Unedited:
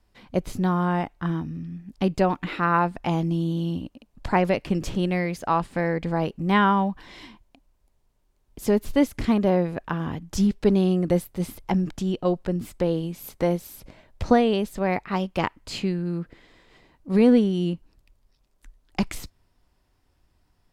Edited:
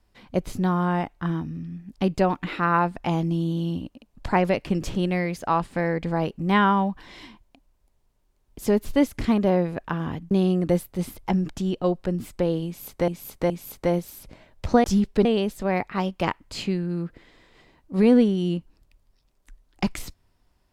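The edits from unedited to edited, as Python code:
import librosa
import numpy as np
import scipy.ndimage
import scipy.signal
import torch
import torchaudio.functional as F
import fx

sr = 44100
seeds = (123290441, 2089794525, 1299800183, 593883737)

y = fx.edit(x, sr, fx.move(start_s=10.31, length_s=0.41, to_s=14.41),
    fx.repeat(start_s=13.07, length_s=0.42, count=3), tone=tone)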